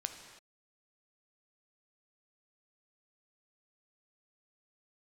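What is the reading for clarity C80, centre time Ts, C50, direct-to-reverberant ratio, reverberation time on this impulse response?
8.5 dB, 28 ms, 7.0 dB, 5.5 dB, not exponential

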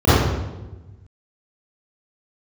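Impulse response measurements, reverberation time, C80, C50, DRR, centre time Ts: 1.1 s, -0.5 dB, -6.0 dB, -15.5 dB, 0.104 s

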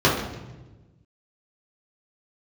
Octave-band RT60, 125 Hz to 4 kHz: 1.8, 1.6, 1.3, 1.0, 0.95, 0.85 s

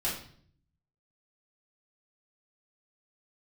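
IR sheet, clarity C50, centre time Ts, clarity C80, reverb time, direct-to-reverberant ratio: 5.0 dB, 36 ms, 9.5 dB, 0.55 s, -7.5 dB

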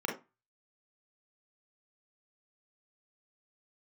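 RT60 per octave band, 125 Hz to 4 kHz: 0.35, 0.30, 0.20, 0.25, 0.25, 0.15 s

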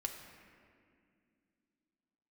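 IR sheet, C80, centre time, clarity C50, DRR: 7.0 dB, 47 ms, 6.0 dB, 2.5 dB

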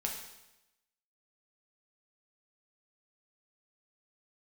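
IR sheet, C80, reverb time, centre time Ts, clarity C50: 7.5 dB, 0.95 s, 37 ms, 5.0 dB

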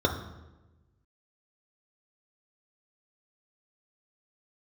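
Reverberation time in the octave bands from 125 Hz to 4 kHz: 1.6, 1.4, 1.2, 1.0, 0.90, 0.75 s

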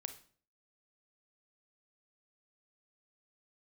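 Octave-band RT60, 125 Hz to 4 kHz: 0.55, 0.55, 0.50, 0.45, 0.40, 0.40 s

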